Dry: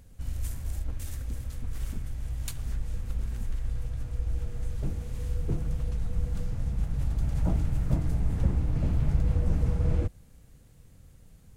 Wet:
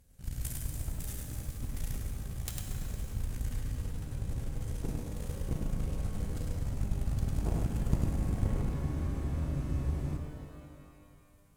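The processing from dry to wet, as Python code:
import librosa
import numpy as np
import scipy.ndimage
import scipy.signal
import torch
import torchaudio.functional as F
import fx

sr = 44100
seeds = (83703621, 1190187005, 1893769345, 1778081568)

p1 = fx.high_shelf(x, sr, hz=5700.0, db=8.0)
p2 = fx.rider(p1, sr, range_db=4, speed_s=0.5)
p3 = p1 + F.gain(torch.from_numpy(p2), -2.0).numpy()
p4 = fx.cheby_harmonics(p3, sr, harmonics=(3, 4, 8), levels_db=(-12, -20, -28), full_scale_db=-5.5)
p5 = p4 + 10.0 ** (-3.5 / 20.0) * np.pad(p4, (int(102 * sr / 1000.0), 0))[:len(p4)]
p6 = fx.spec_freeze(p5, sr, seeds[0], at_s=8.75, hold_s=1.42)
p7 = fx.rev_shimmer(p6, sr, seeds[1], rt60_s=2.1, semitones=12, shimmer_db=-8, drr_db=4.0)
y = F.gain(torch.from_numpy(p7), -5.5).numpy()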